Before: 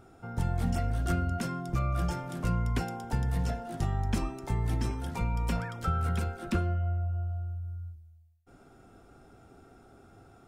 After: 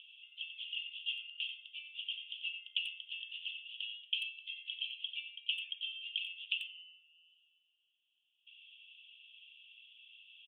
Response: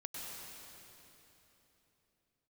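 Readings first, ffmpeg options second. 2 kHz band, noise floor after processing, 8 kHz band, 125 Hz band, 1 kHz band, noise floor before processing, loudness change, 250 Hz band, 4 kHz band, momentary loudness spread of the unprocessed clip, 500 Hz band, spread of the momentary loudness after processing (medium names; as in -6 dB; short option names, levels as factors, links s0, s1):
+1.0 dB, -80 dBFS, under -20 dB, under -40 dB, under -40 dB, -57 dBFS, -7.5 dB, under -40 dB, +12.5 dB, 5 LU, under -40 dB, 18 LU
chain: -filter_complex "[0:a]asplit=2[s0][s1];[s1]acompressor=mode=upward:threshold=0.0251:ratio=2.5,volume=1.19[s2];[s0][s2]amix=inputs=2:normalize=0,asuperpass=centerf=3000:order=8:qfactor=4.1,asplit=2[s3][s4];[s4]adelay=90,highpass=300,lowpass=3400,asoftclip=type=hard:threshold=0.0141,volume=0.447[s5];[s3][s5]amix=inputs=2:normalize=0,volume=2.82"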